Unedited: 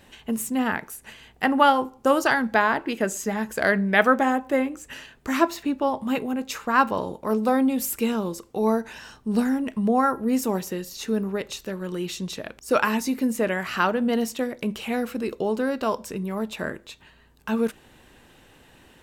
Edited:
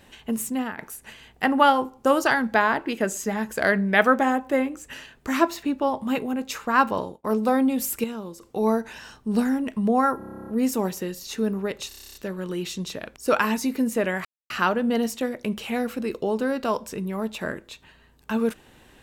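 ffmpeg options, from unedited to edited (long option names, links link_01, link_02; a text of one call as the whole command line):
ffmpeg -i in.wav -filter_complex "[0:a]asplit=25[link_01][link_02][link_03][link_04][link_05][link_06][link_07][link_08][link_09][link_10][link_11][link_12][link_13][link_14][link_15][link_16][link_17][link_18][link_19][link_20][link_21][link_22][link_23][link_24][link_25];[link_01]atrim=end=0.78,asetpts=PTS-STARTPTS,afade=type=out:start_time=0.49:duration=0.29:silence=0.188365[link_26];[link_02]atrim=start=0.78:end=7.24,asetpts=PTS-STARTPTS,afade=type=in:duration=0.004:curve=hsin:silence=0.188365,afade=type=out:start_time=6.21:duration=0.25[link_27];[link_03]atrim=start=7.24:end=8.042,asetpts=PTS-STARTPTS,afade=type=in:duration=0.004:curve=hsin[link_28];[link_04]atrim=start=8.038:end=8.412,asetpts=PTS-STARTPTS,volume=-8dB[link_29];[link_05]atrim=start=8.408:end=10.212[link_30];[link_06]atrim=start=10.178:end=10.212[link_31];[link_07]atrim=start=10.178:end=10.212[link_32];[link_08]atrim=start=10.178:end=10.212[link_33];[link_09]atrim=start=10.178:end=10.212[link_34];[link_10]atrim=start=10.178:end=10.212[link_35];[link_11]atrim=start=10.178:end=10.212[link_36];[link_12]atrim=start=10.178:end=10.212[link_37];[link_13]atrim=start=10.178:end=10.212[link_38];[link_14]atrim=start=10.178:end=10.212[link_39];[link_15]atrim=start=10.178:end=11.612[link_40];[link_16]atrim=start=11.578:end=11.612[link_41];[link_17]atrim=start=11.578:end=11.612[link_42];[link_18]atrim=start=11.578:end=11.612[link_43];[link_19]atrim=start=11.578:end=11.612[link_44];[link_20]atrim=start=11.578:end=11.612[link_45];[link_21]atrim=start=11.578:end=11.612[link_46];[link_22]atrim=start=11.578:end=11.612[link_47];[link_23]atrim=start=11.578:end=11.612[link_48];[link_24]atrim=start=11.578:end=13.68,asetpts=PTS-STARTPTS,afade=type=out:start_time=2.098:duration=0.004:curve=hsin,apad=pad_dur=0.25[link_49];[link_25]atrim=start=13.68,asetpts=PTS-STARTPTS,afade=type=in:duration=0.004:curve=hsin[link_50];[link_26][link_27][link_28]concat=n=3:v=0:a=1[link_51];[link_51][link_29]acrossfade=duration=0.004:curve1=hsin:curve2=hsin[link_52];[link_52][link_30]acrossfade=duration=0.004:curve1=hsin:curve2=hsin[link_53];[link_53][link_31]acrossfade=duration=0.004:curve1=hsin:curve2=hsin[link_54];[link_54][link_32]acrossfade=duration=0.004:curve1=hsin:curve2=hsin[link_55];[link_55][link_33]acrossfade=duration=0.004:curve1=hsin:curve2=hsin[link_56];[link_56][link_34]acrossfade=duration=0.004:curve1=hsin:curve2=hsin[link_57];[link_57][link_35]acrossfade=duration=0.004:curve1=hsin:curve2=hsin[link_58];[link_58][link_36]acrossfade=duration=0.004:curve1=hsin:curve2=hsin[link_59];[link_59][link_37]acrossfade=duration=0.004:curve1=hsin:curve2=hsin[link_60];[link_60][link_38]acrossfade=duration=0.004:curve1=hsin:curve2=hsin[link_61];[link_61][link_39]acrossfade=duration=0.004:curve1=hsin:curve2=hsin[link_62];[link_62][link_40]acrossfade=duration=0.004:curve1=hsin:curve2=hsin[link_63];[link_63][link_41]acrossfade=duration=0.004:curve1=hsin:curve2=hsin[link_64];[link_64][link_42]acrossfade=duration=0.004:curve1=hsin:curve2=hsin[link_65];[link_65][link_43]acrossfade=duration=0.004:curve1=hsin:curve2=hsin[link_66];[link_66][link_44]acrossfade=duration=0.004:curve1=hsin:curve2=hsin[link_67];[link_67][link_45]acrossfade=duration=0.004:curve1=hsin:curve2=hsin[link_68];[link_68][link_46]acrossfade=duration=0.004:curve1=hsin:curve2=hsin[link_69];[link_69][link_47]acrossfade=duration=0.004:curve1=hsin:curve2=hsin[link_70];[link_70][link_48]acrossfade=duration=0.004:curve1=hsin:curve2=hsin[link_71];[link_49][link_50]concat=n=2:v=0:a=1[link_72];[link_71][link_72]acrossfade=duration=0.004:curve1=hsin:curve2=hsin" out.wav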